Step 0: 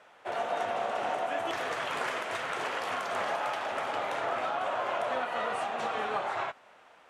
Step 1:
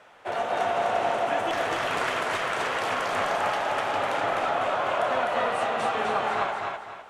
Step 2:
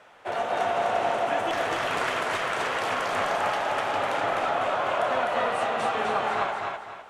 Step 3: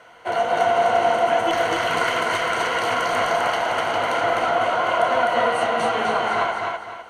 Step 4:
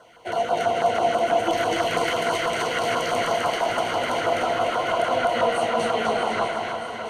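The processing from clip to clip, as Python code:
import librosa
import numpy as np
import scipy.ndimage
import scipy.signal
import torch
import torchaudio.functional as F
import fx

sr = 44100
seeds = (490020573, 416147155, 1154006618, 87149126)

y1 = fx.low_shelf(x, sr, hz=92.0, db=10.5)
y1 = fx.echo_feedback(y1, sr, ms=254, feedback_pct=34, wet_db=-3)
y1 = y1 * 10.0 ** (4.0 / 20.0)
y2 = y1
y3 = fx.ripple_eq(y2, sr, per_octave=1.9, db=10)
y3 = y3 * 10.0 ** (4.0 / 20.0)
y4 = fx.filter_lfo_notch(y3, sr, shape='saw_down', hz=6.1, low_hz=710.0, high_hz=2400.0, q=0.84)
y4 = fx.echo_alternate(y4, sr, ms=315, hz=1400.0, feedback_pct=82, wet_db=-8.0)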